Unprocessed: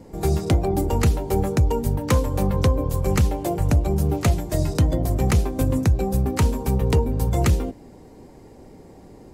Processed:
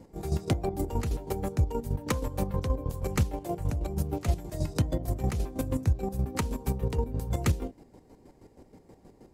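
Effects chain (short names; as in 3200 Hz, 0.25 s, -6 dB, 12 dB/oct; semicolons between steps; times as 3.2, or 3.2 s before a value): chopper 6.3 Hz, depth 60%, duty 35%; gain -6 dB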